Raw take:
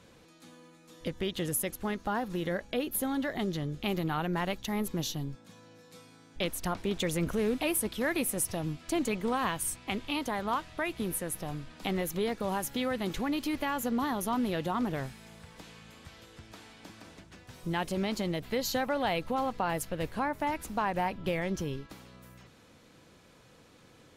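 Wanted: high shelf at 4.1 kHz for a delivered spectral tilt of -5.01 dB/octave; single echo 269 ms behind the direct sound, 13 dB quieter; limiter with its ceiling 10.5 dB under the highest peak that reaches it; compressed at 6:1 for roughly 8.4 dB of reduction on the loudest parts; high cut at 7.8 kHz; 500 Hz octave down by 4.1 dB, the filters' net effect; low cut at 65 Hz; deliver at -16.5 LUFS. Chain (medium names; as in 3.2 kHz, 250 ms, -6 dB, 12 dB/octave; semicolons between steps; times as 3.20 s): high-pass 65 Hz; low-pass 7.8 kHz; peaking EQ 500 Hz -5 dB; treble shelf 4.1 kHz -7.5 dB; compression 6:1, threshold -37 dBFS; peak limiter -35 dBFS; delay 269 ms -13 dB; trim +28.5 dB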